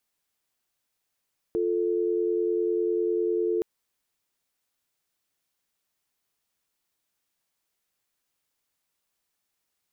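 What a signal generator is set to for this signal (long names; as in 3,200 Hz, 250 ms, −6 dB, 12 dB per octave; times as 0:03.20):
call progress tone dial tone, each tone −25.5 dBFS 2.07 s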